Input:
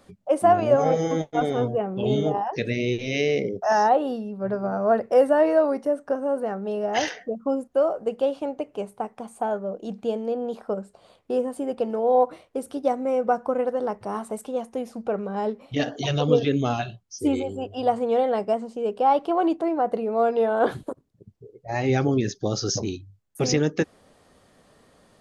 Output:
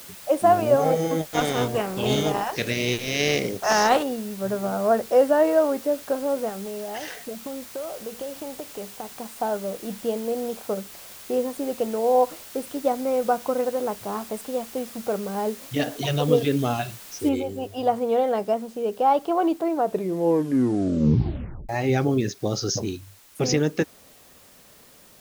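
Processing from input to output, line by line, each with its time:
1.26–4.02 spectral contrast lowered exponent 0.58
6.49–9.2 compressor, threshold -30 dBFS
13.2–14.34 air absorption 63 m
17.29 noise floor step -43 dB -53 dB
19.75 tape stop 1.94 s

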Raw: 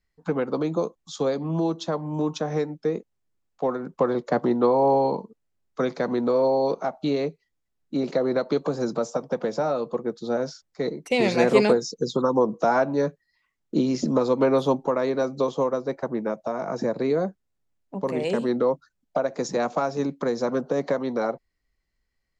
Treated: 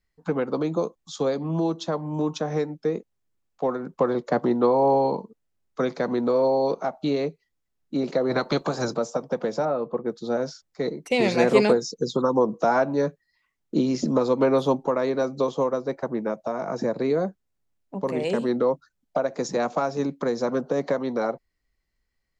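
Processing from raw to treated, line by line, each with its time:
8.29–8.93 spectral limiter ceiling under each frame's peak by 14 dB
9.65–10.06 LPF 2000 Hz

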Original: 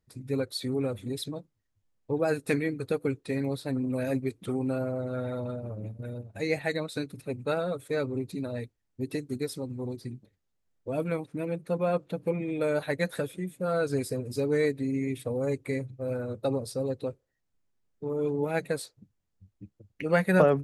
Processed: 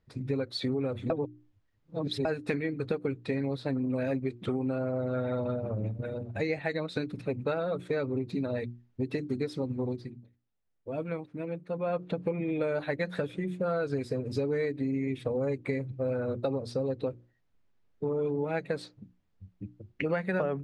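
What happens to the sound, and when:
1.1–2.25 reverse
9.87–12.06 dip -10 dB, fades 0.24 s
whole clip: LPF 3700 Hz 12 dB/oct; notches 60/120/180/240/300/360 Hz; compressor 6:1, threshold -34 dBFS; gain +6.5 dB

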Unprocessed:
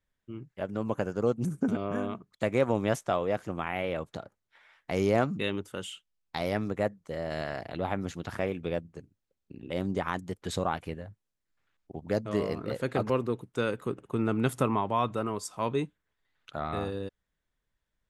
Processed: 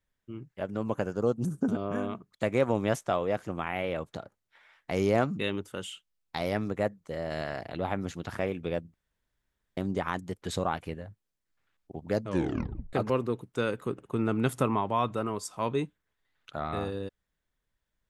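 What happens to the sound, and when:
1.16–1.91 bell 2200 Hz -9.5 dB 0.55 oct
8.94–9.77 room tone
12.28 tape stop 0.65 s

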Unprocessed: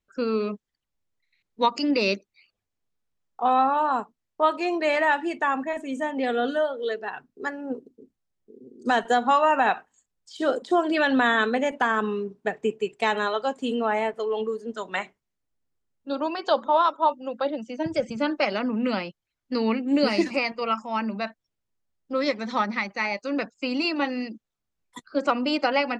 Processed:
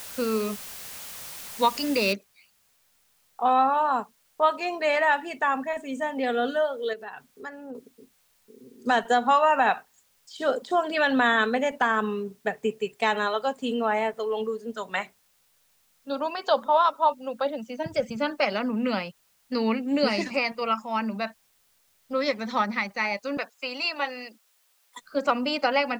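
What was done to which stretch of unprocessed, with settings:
2.13 noise floor step -40 dB -66 dB
6.93–7.75 compressor 2:1, threshold -38 dBFS
23.37–25.01 HPF 530 Hz
whole clip: bell 330 Hz -12.5 dB 0.26 oct

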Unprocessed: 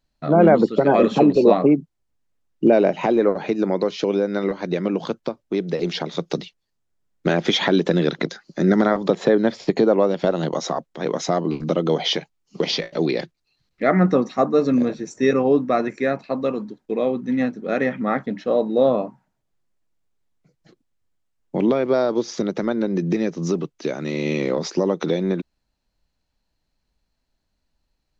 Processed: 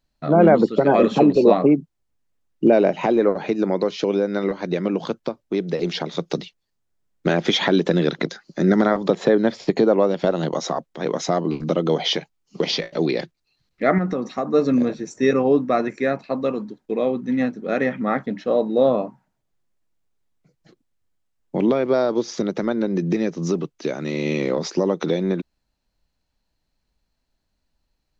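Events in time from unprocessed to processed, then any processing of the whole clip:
13.98–14.54 compressor, threshold -19 dBFS

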